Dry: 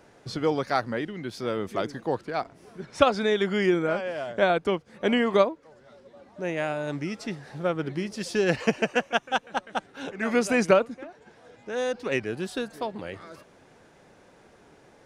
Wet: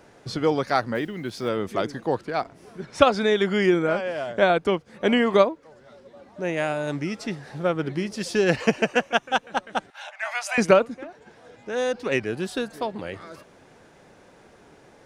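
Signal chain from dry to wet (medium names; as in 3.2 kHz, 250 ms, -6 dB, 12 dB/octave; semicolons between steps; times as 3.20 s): 0.95–1.49 s: block-companded coder 7-bit; 6.53–6.93 s: treble shelf 8.4 kHz +8 dB; 9.90–10.58 s: rippled Chebyshev high-pass 600 Hz, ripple 3 dB; trim +3 dB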